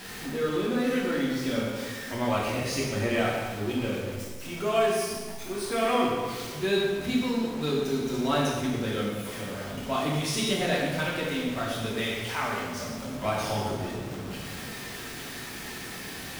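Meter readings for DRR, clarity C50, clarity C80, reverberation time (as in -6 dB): -5.5 dB, 0.5 dB, 2.5 dB, 1.4 s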